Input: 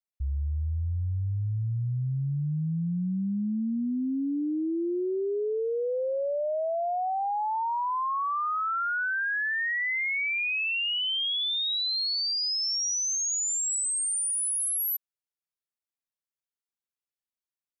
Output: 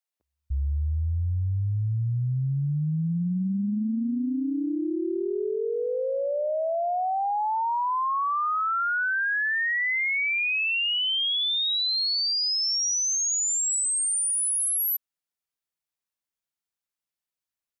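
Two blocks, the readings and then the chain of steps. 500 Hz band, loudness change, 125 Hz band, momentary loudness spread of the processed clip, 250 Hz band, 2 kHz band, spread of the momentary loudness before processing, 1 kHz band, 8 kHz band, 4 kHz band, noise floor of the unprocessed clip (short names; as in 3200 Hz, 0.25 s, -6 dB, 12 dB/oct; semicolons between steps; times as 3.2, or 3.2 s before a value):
+1.0 dB, +3.0 dB, +3.0 dB, 6 LU, +1.5 dB, +3.0 dB, 5 LU, +2.5 dB, +3.0 dB, +3.0 dB, under -85 dBFS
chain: bands offset in time highs, lows 0.3 s, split 380 Hz; gain +3 dB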